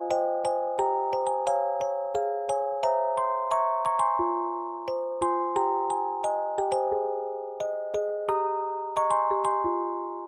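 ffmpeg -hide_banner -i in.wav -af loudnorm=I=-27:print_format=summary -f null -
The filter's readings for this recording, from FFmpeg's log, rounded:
Input Integrated:    -27.7 LUFS
Input True Peak:     -12.6 dBTP
Input LRA:             1.4 LU
Input Threshold:     -37.7 LUFS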